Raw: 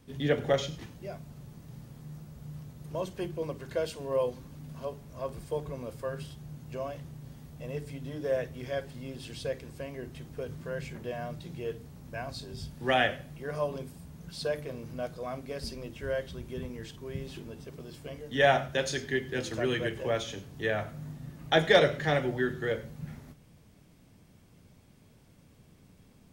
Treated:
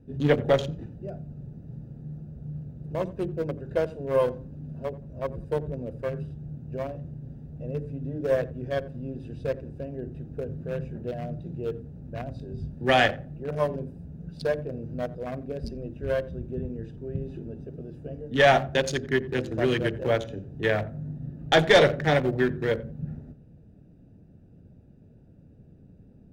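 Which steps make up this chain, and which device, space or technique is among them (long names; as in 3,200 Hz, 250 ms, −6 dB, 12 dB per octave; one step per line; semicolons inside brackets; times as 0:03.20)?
adaptive Wiener filter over 41 samples
rockabilly slapback (tube saturation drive 17 dB, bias 0.3; tape delay 87 ms, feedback 27%, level −16 dB, low-pass 1,100 Hz)
level +7.5 dB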